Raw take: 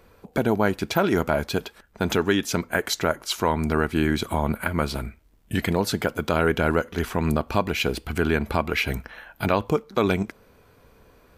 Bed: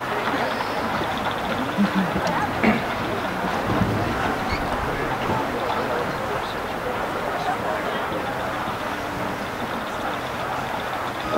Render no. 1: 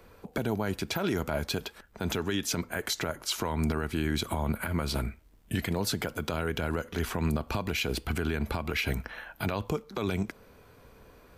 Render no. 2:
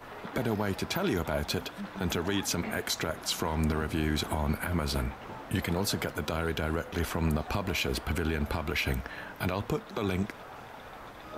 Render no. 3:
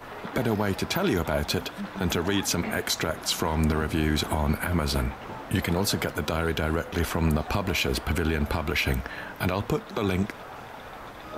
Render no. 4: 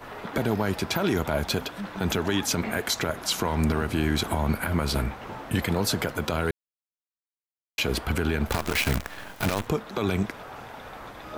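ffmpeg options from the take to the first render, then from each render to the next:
ffmpeg -i in.wav -filter_complex "[0:a]acrossover=split=140|3000[link_01][link_02][link_03];[link_02]acompressor=threshold=-28dB:ratio=2[link_04];[link_01][link_04][link_03]amix=inputs=3:normalize=0,alimiter=limit=-19.5dB:level=0:latency=1:release=53" out.wav
ffmpeg -i in.wav -i bed.wav -filter_complex "[1:a]volume=-19.5dB[link_01];[0:a][link_01]amix=inputs=2:normalize=0" out.wav
ffmpeg -i in.wav -af "volume=4.5dB" out.wav
ffmpeg -i in.wav -filter_complex "[0:a]asettb=1/sr,asplit=3[link_01][link_02][link_03];[link_01]atrim=end=8.474[link_04];[link_02]atrim=start=8.47:end=9.67,asetpts=PTS-STARTPTS,afade=type=in:duration=0.004:curve=qsin,afade=type=out:start_time=1.196:duration=0.004:curve=qsin,acrusher=bits=5:dc=4:mix=0:aa=0.000001[link_05];[link_03]atrim=start=9.666[link_06];[link_04][link_05]acrossfade=duration=0.004:curve1=hsin:curve2=qsin[link_07];[link_07][link_06]acrossfade=duration=0.004:curve1=qsin:curve2=hsin,asplit=3[link_08][link_09][link_10];[link_08]atrim=end=6.51,asetpts=PTS-STARTPTS,afade=type=out:start_time=6.506:duration=0.004:curve=hsin[link_11];[link_09]atrim=start=6.51:end=7.78,asetpts=PTS-STARTPTS,volume=0[link_12];[link_10]atrim=start=7.78,asetpts=PTS-STARTPTS,afade=type=in:duration=0.004:curve=hsin[link_13];[link_11][link_12][link_13]concat=n=3:v=0:a=1" out.wav

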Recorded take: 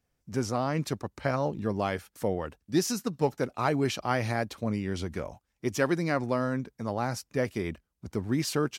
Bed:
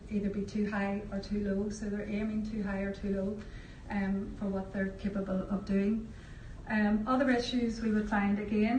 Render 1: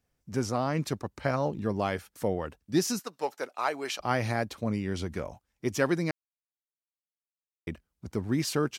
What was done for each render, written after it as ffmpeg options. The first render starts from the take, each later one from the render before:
ffmpeg -i in.wav -filter_complex "[0:a]asettb=1/sr,asplit=3[link_01][link_02][link_03];[link_01]atrim=end=2.994[link_04];[link_02]atrim=start=2.99:end=4,asetpts=PTS-STARTPTS,afade=type=in:duration=0.004:curve=qsin,afade=type=out:start_time=1.006:duration=0.004:curve=qsin,highpass=580[link_05];[link_03]atrim=start=3.996[link_06];[link_04][link_05]acrossfade=duration=0.004:curve1=hsin:curve2=qsin[link_07];[link_07][link_06]acrossfade=duration=0.004:curve1=qsin:curve2=hsin,asplit=3[link_08][link_09][link_10];[link_08]atrim=end=6.11,asetpts=PTS-STARTPTS,afade=type=out:start_time=6.106:duration=0.004:curve=hsin[link_11];[link_09]atrim=start=6.11:end=7.67,asetpts=PTS-STARTPTS,volume=0[link_12];[link_10]atrim=start=7.67,asetpts=PTS-STARTPTS,afade=type=in:duration=0.004:curve=hsin[link_13];[link_11][link_12][link_13]concat=n=3:v=0:a=1" out.wav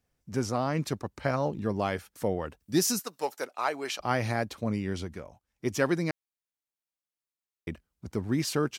ffmpeg -i in.wav -filter_complex "[0:a]asettb=1/sr,asplit=3[link_01][link_02][link_03];[link_01]atrim=end=2.604[link_04];[link_02]atrim=start=2.6:end=3.45,asetpts=PTS-STARTPTS,afade=type=in:duration=0.004:curve=qsin,afade=type=out:start_time=0.846:duration=0.004:curve=qsin,highshelf=frequency=7000:gain=10.5[link_05];[link_03]atrim=start=3.446[link_06];[link_04][link_05]acrossfade=duration=0.004:curve1=hsin:curve2=qsin[link_07];[link_07][link_06]acrossfade=duration=0.004:curve1=qsin:curve2=hsin,asplit=3[link_08][link_09][link_10];[link_08]atrim=end=5.24,asetpts=PTS-STARTPTS,afade=type=out:start_time=4.9:duration=0.34:silence=0.375837[link_11];[link_09]atrim=start=5.24:end=5.33,asetpts=PTS-STARTPTS,volume=-8.5dB[link_12];[link_10]atrim=start=5.33,asetpts=PTS-STARTPTS,afade=type=in:duration=0.34:silence=0.375837[link_13];[link_11][link_12][link_13]concat=n=3:v=0:a=1" out.wav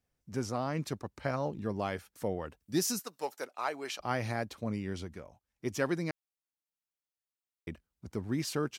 ffmpeg -i in.wav -af "volume=-5dB" out.wav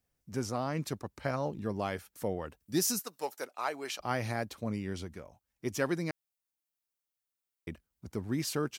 ffmpeg -i in.wav -af "highshelf=frequency=9900:gain=7.5" out.wav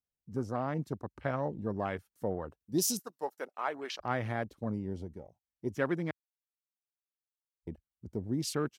ffmpeg -i in.wav -af "bandreject=frequency=2400:width=16,afwtdn=0.00631" out.wav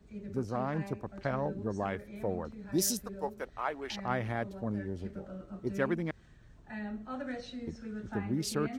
ffmpeg -i in.wav -i bed.wav -filter_complex "[1:a]volume=-11dB[link_01];[0:a][link_01]amix=inputs=2:normalize=0" out.wav

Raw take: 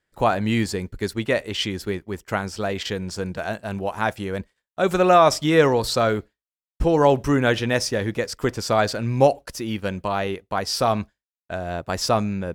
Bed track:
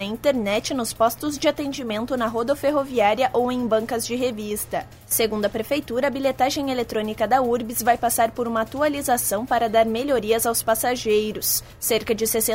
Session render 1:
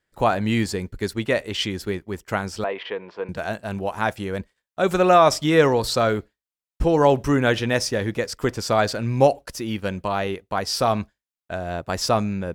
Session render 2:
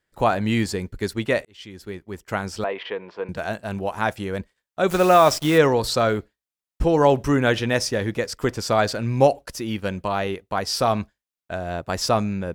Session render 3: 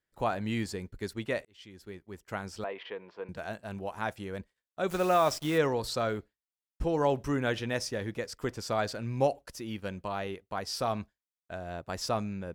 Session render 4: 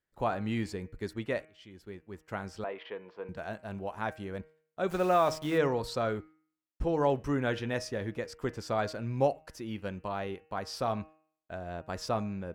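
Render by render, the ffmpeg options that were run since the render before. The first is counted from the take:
ffmpeg -i in.wav -filter_complex "[0:a]asettb=1/sr,asplit=3[link_01][link_02][link_03];[link_01]atrim=end=2.644[link_04];[link_02]atrim=start=2.64:end=3.29,asetpts=PTS-STARTPTS,afade=type=in:duration=0.004:curve=qsin,afade=type=out:start_time=0.646:duration=0.004:curve=qsin,highpass=430,equalizer=frequency=450:width_type=q:width=4:gain=4,equalizer=frequency=1000:width_type=q:width=4:gain=7,equalizer=frequency=1500:width_type=q:width=4:gain=-4,lowpass=frequency=2800:width=0.5412,lowpass=frequency=2800:width=1.3066[link_05];[link_03]atrim=start=3.286[link_06];[link_04][link_05]acrossfade=duration=0.004:curve1=hsin:curve2=qsin[link_07];[link_07][link_06]acrossfade=duration=0.004:curve1=qsin:curve2=hsin" out.wav
ffmpeg -i in.wav -filter_complex "[0:a]asplit=3[link_01][link_02][link_03];[link_01]afade=type=out:start_time=4.89:duration=0.02[link_04];[link_02]acrusher=bits=6:dc=4:mix=0:aa=0.000001,afade=type=in:start_time=4.89:duration=0.02,afade=type=out:start_time=5.57:duration=0.02[link_05];[link_03]afade=type=in:start_time=5.57:duration=0.02[link_06];[link_04][link_05][link_06]amix=inputs=3:normalize=0,asplit=2[link_07][link_08];[link_07]atrim=end=1.45,asetpts=PTS-STARTPTS,afade=type=out:start_time=1.446:duration=0.004:curve=hsin[link_09];[link_08]atrim=start=1.45,asetpts=PTS-STARTPTS,afade=type=in:duration=1.06[link_10];[link_09][link_10]concat=n=2:v=0:a=1" out.wav
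ffmpeg -i in.wav -af "volume=-10.5dB" out.wav
ffmpeg -i in.wav -af "highshelf=frequency=3500:gain=-7.5,bandreject=frequency=156.8:width_type=h:width=4,bandreject=frequency=313.6:width_type=h:width=4,bandreject=frequency=470.4:width_type=h:width=4,bandreject=frequency=627.2:width_type=h:width=4,bandreject=frequency=784:width_type=h:width=4,bandreject=frequency=940.8:width_type=h:width=4,bandreject=frequency=1097.6:width_type=h:width=4,bandreject=frequency=1254.4:width_type=h:width=4,bandreject=frequency=1411.2:width_type=h:width=4,bandreject=frequency=1568:width_type=h:width=4,bandreject=frequency=1724.8:width_type=h:width=4,bandreject=frequency=1881.6:width_type=h:width=4,bandreject=frequency=2038.4:width_type=h:width=4,bandreject=frequency=2195.2:width_type=h:width=4,bandreject=frequency=2352:width_type=h:width=4,bandreject=frequency=2508.8:width_type=h:width=4,bandreject=frequency=2665.6:width_type=h:width=4,bandreject=frequency=2822.4:width_type=h:width=4,bandreject=frequency=2979.2:width_type=h:width=4" out.wav

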